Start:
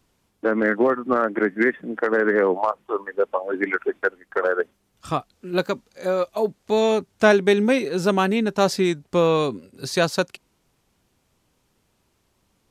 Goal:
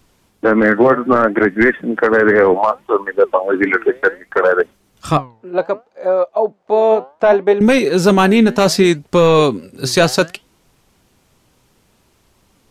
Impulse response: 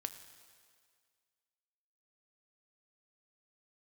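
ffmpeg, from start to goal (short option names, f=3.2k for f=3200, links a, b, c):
-filter_complex "[0:a]asettb=1/sr,asplit=3[a][b][c];[a]atrim=end=5.174[d];[b]atrim=start=5.17:end=7.61,asetpts=PTS-STARTPTS,afade=t=in:d=0.004:c=qsin,afade=t=out:st=2.436:d=0.004:c=qsin,bandpass=f=690:t=q:w=1.6:csg=0[e];[c]atrim=start=7.606[f];[d][e]acrossfade=d=0.004:c1=hsin:c2=qsin[g];[g][f]acrossfade=d=0.004:c1=qsin:c2=hsin,apsyclip=15dB,flanger=delay=0.3:depth=8.9:regen=86:speed=0.65:shape=triangular"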